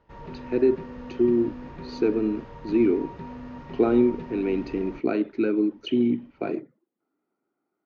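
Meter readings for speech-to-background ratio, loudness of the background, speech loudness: 15.5 dB, -40.5 LUFS, -25.0 LUFS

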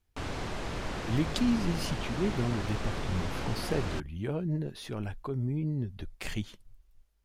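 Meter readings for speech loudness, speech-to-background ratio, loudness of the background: -34.0 LUFS, 3.0 dB, -37.0 LUFS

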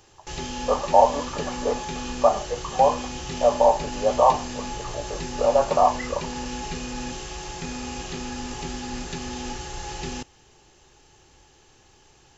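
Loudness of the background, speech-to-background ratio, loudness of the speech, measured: -32.5 LUFS, 10.5 dB, -22.0 LUFS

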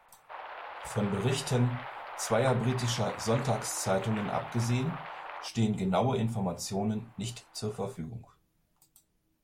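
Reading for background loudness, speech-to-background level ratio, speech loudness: -41.5 LUFS, 10.0 dB, -31.5 LUFS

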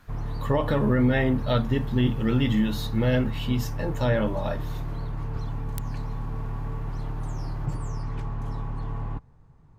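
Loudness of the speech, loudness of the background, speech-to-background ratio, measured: -25.5 LUFS, -33.5 LUFS, 8.0 dB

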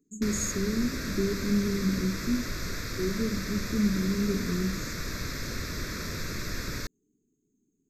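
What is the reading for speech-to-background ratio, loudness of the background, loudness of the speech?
5.0 dB, -35.0 LUFS, -30.0 LUFS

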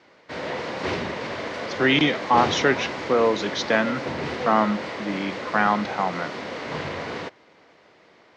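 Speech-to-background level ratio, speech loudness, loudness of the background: 7.5 dB, -23.0 LUFS, -30.5 LUFS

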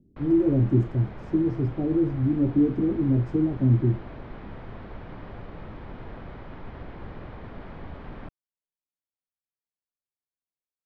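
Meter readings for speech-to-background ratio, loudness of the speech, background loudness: 18.0 dB, -24.0 LUFS, -42.0 LUFS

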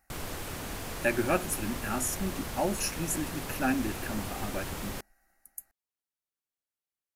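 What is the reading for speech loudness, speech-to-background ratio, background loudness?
-32.5 LUFS, 5.5 dB, -38.0 LUFS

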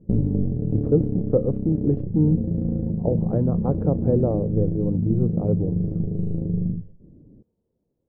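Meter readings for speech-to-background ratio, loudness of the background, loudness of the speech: 1.5 dB, -26.0 LUFS, -24.5 LUFS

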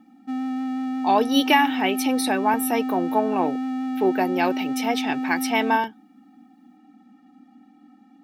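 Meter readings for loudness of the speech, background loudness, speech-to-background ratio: -23.0 LUFS, -27.5 LUFS, 4.5 dB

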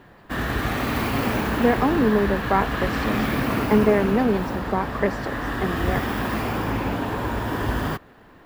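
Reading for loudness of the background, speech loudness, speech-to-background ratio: -25.5 LUFS, -23.5 LUFS, 2.0 dB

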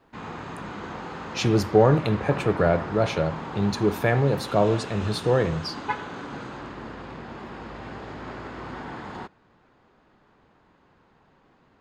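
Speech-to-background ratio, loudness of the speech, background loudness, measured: 12.5 dB, -23.5 LUFS, -36.0 LUFS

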